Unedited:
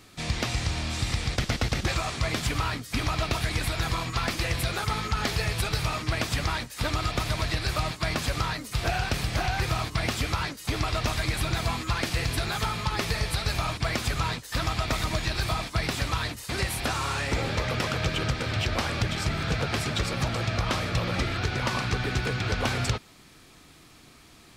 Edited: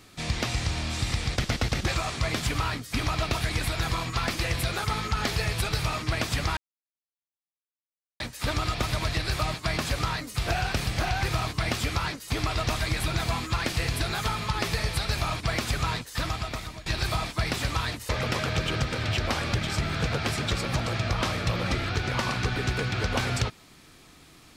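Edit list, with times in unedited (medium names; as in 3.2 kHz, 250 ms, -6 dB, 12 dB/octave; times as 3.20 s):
6.57 s: insert silence 1.63 s
14.48–15.23 s: fade out, to -18.5 dB
16.46–17.57 s: delete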